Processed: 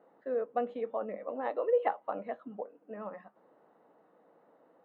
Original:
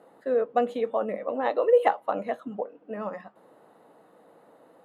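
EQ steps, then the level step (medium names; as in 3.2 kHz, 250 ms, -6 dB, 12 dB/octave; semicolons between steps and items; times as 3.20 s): band-pass 140–2400 Hz; -8.0 dB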